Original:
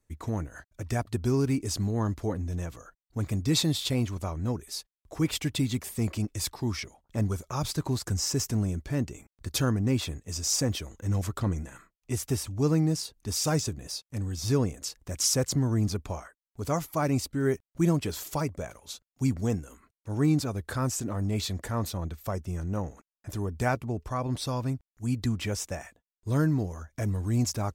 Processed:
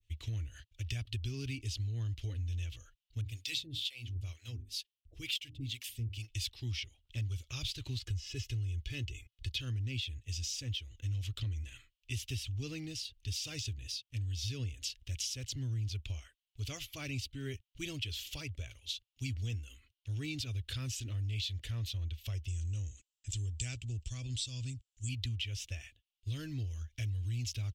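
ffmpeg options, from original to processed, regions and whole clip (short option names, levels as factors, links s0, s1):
-filter_complex "[0:a]asettb=1/sr,asplit=3[s0][s1][s2];[s0]atrim=end=3.214[s3];[s1]atrim=start=3.21:end=6.29,asetpts=PTS-STARTPTS,afade=t=in:d=0.004:c=qsin,afade=t=out:st=3.076:d=0.004:c=qsin,bandreject=f=50:t=h:w=6,bandreject=f=100:t=h:w=6,bandreject=f=150:t=h:w=6,bandreject=f=200:t=h:w=6,bandreject=f=250:t=h:w=6,bandreject=f=300:t=h:w=6,bandreject=f=350:t=h:w=6,bandreject=f=400:t=h:w=6,acrossover=split=540[s4][s5];[s4]aeval=exprs='val(0)*(1-1/2+1/2*cos(2*PI*2.1*n/s))':c=same[s6];[s5]aeval=exprs='val(0)*(1-1/2-1/2*cos(2*PI*2.1*n/s))':c=same[s7];[s6][s7]amix=inputs=2:normalize=0,highshelf=f=7800:g=8[s8];[s2]atrim=start=6.286[s9];[s3][s8]acrossfade=d=0.004:c1=hsin:c2=qsin[s10];[s10][s9]acrossfade=d=0.004:c1=qsin:c2=hsin,asettb=1/sr,asplit=3[s11][s12][s13];[s11]atrim=end=7.994[s14];[s12]atrim=start=7.99:end=9.6,asetpts=PTS-STARTPTS,afade=t=in:d=0.004:c=qsin,afade=t=out:st=1.606:d=0.004:c=qsin,acrossover=split=3600[s15][s16];[s16]acompressor=threshold=0.00891:ratio=4:attack=1:release=60[s17];[s15][s17]amix=inputs=2:normalize=0,aecho=1:1:2.4:0.53,atrim=end_sample=71001[s18];[s13]atrim=start=9.596[s19];[s14][s18]acrossfade=d=0.004:c1=hsin:c2=qsin[s20];[s20][s19]acrossfade=d=0.004:c1=qsin:c2=hsin,asettb=1/sr,asplit=3[s21][s22][s23];[s21]atrim=end=22.484[s24];[s22]atrim=start=22.48:end=25.09,asetpts=PTS-STARTPTS,afade=t=in:d=0.004:c=qsin,afade=t=out:st=2.606:d=0.004:c=qsin,lowpass=f=7600:t=q:w=11,equalizer=f=1100:w=0.44:g=-8[s25];[s23]atrim=start=25.086[s26];[s24][s25]acrossfade=d=0.004:c1=hsin:c2=qsin[s27];[s27][s26]acrossfade=d=0.004:c1=qsin:c2=hsin,firequalizer=gain_entry='entry(110,0);entry(170,-28);entry(250,-16);entry(890,-28);entry(2900,13);entry(4400,2);entry(7900,-9)':delay=0.05:min_phase=1,acompressor=threshold=0.0178:ratio=5,adynamicequalizer=threshold=0.00178:dfrequency=1800:dqfactor=0.7:tfrequency=1800:tqfactor=0.7:attack=5:release=100:ratio=0.375:range=2:mode=cutabove:tftype=highshelf,volume=1.12"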